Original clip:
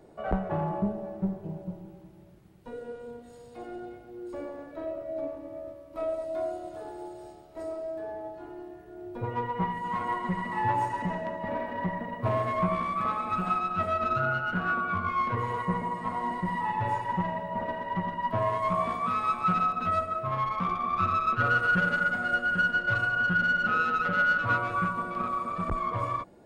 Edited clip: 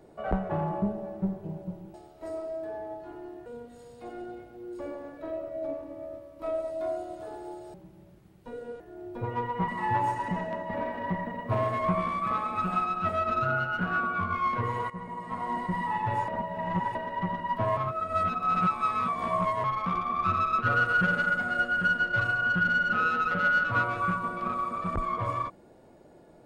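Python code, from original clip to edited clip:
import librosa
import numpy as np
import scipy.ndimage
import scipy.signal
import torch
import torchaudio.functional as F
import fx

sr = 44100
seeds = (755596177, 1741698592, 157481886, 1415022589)

y = fx.edit(x, sr, fx.swap(start_s=1.94, length_s=1.06, other_s=7.28, other_length_s=1.52),
    fx.cut(start_s=9.68, length_s=0.74),
    fx.fade_in_from(start_s=15.64, length_s=0.65, floor_db=-14.0),
    fx.reverse_span(start_s=17.02, length_s=0.67),
    fx.reverse_span(start_s=18.51, length_s=1.87), tone=tone)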